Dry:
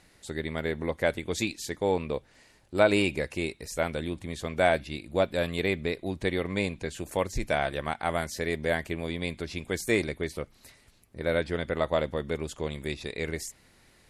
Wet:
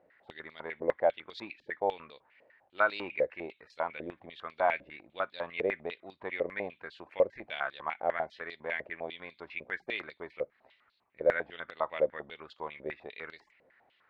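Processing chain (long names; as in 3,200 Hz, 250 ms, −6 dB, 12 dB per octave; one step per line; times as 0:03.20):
high-frequency loss of the air 390 metres
band-pass on a step sequencer 10 Hz 550–4,200 Hz
level +8 dB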